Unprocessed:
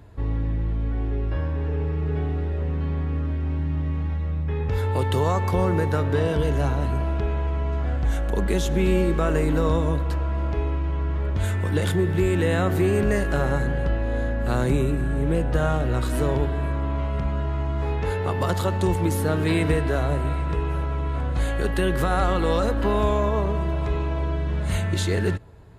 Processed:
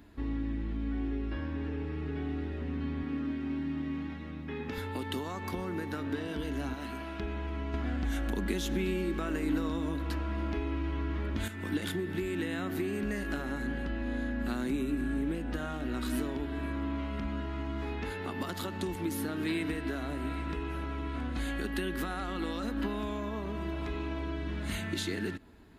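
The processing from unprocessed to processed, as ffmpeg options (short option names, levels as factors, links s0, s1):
-filter_complex "[0:a]asettb=1/sr,asplit=3[s0][s1][s2];[s0]atrim=end=3.034[s3];[s1]atrim=start=3.03:end=4.78,asetpts=PTS-STARTPTS,afade=t=in:d=0.004:c=qsin,afade=t=out:st=1.746:d=0.004:c=qsin,highpass=130[s4];[s2]atrim=start=4.776[s5];[s3][s4]acrossfade=d=0.004:c1=hsin:c2=qsin[s6];[s6][s5]acrossfade=d=0.004:c1=qsin:c2=hsin,asettb=1/sr,asplit=3[s7][s8][s9];[s7]atrim=end=6.744[s10];[s8]atrim=start=6.74:end=7.2,asetpts=PTS-STARTPTS,afade=t=in:d=0.004:c=qsin,afade=t=out:st=0.456:d=0.004:c=qsin,lowshelf=f=440:g=-11[s11];[s9]atrim=start=7.196[s12];[s10][s11]acrossfade=d=0.004:c1=hsin:c2=qsin[s13];[s13][s12]acrossfade=d=0.004:c1=qsin:c2=hsin,asplit=3[s14][s15][s16];[s14]atrim=end=7.742[s17];[s15]atrim=start=7.738:end=11.482,asetpts=PTS-STARTPTS,volume=3.16[s18];[s16]atrim=start=11.478[s19];[s17][s18]acrossfade=d=0.004:c1=hsin:c2=hsin[s20];[s20][s19]acrossfade=d=0.004:c1=hsin:c2=hsin,bass=f=250:g=-8,treble=f=4000:g=2,acompressor=threshold=0.0398:ratio=6,equalizer=f=125:t=o:w=1:g=-12,equalizer=f=250:t=o:w=1:g=12,equalizer=f=500:t=o:w=1:g=-12,equalizer=f=1000:t=o:w=1:g=-5,equalizer=f=8000:t=o:w=1:g=-7"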